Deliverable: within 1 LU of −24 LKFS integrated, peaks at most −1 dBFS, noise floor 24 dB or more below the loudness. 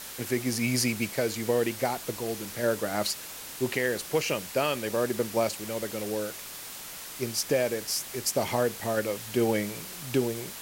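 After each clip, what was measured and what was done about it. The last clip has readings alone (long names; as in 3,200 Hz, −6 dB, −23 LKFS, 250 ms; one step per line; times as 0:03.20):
background noise floor −41 dBFS; target noise floor −54 dBFS; integrated loudness −29.5 LKFS; sample peak −13.0 dBFS; target loudness −24.0 LKFS
→ broadband denoise 13 dB, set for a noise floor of −41 dBFS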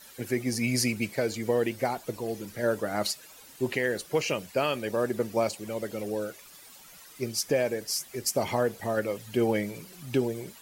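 background noise floor −51 dBFS; target noise floor −54 dBFS
→ broadband denoise 6 dB, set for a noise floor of −51 dBFS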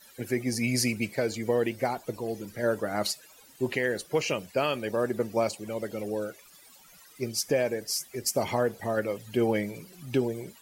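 background noise floor −55 dBFS; integrated loudness −29.5 LKFS; sample peak −13.5 dBFS; target loudness −24.0 LKFS
→ level +5.5 dB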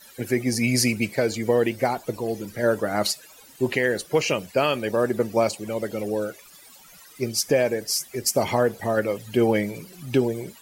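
integrated loudness −24.0 LKFS; sample peak −8.0 dBFS; background noise floor −49 dBFS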